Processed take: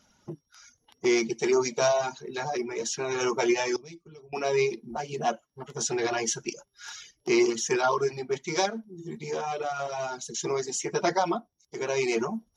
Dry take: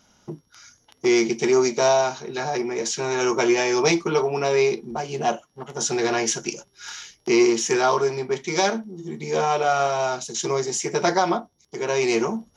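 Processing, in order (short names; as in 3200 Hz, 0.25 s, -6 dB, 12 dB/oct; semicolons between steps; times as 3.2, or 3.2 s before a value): bin magnitudes rounded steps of 15 dB; reverb removal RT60 0.64 s; 3.76–4.33 passive tone stack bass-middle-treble 10-0-1; 8.65–10.45 compressor, threshold -24 dBFS, peak gain reduction 7 dB; gain -3.5 dB; MP3 80 kbps 44100 Hz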